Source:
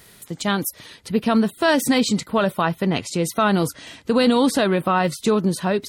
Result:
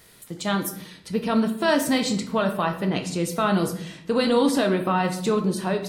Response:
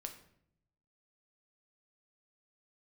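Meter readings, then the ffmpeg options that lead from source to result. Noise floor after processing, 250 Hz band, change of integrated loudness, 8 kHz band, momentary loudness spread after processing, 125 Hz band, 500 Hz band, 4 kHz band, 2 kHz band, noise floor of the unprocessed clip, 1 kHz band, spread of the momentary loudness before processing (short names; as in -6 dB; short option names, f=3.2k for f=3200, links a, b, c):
-50 dBFS, -3.5 dB, -3.0 dB, -4.0 dB, 9 LU, -3.0 dB, -2.5 dB, -3.5 dB, -4.0 dB, -50 dBFS, -3.5 dB, 9 LU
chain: -filter_complex "[0:a]bandreject=f=50:t=h:w=6,bandreject=f=100:t=h:w=6,bandreject=f=150:t=h:w=6[a];[1:a]atrim=start_sample=2205[b];[a][b]afir=irnorm=-1:irlink=0"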